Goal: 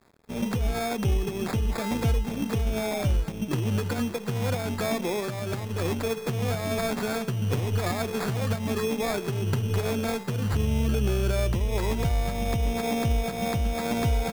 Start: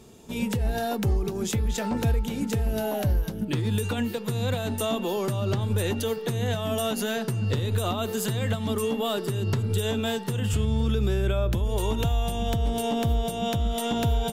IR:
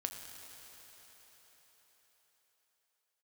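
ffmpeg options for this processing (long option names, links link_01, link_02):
-filter_complex "[0:a]asettb=1/sr,asplit=3[link_01][link_02][link_03];[link_01]atrim=end=5.204[link_04];[link_02]atrim=start=5.2:end=5.8,asetpts=PTS-STARTPTS,afade=type=in:duration=0.004:curve=qsin,afade=type=out:start_time=0.596:duration=0.004:curve=qsin,lowshelf=frequency=330:gain=-6.5[link_05];[link_03]atrim=start=5.796[link_06];[link_04][link_05]acrossfade=duration=0.004:curve1=hsin:curve2=qsin[link_07];[link_07][link_06]acrossfade=duration=0.004:curve1=qsin:curve2=hsin,acrusher=samples=15:mix=1:aa=0.000001,aeval=exprs='sgn(val(0))*max(abs(val(0))-0.00422,0)':channel_layout=same"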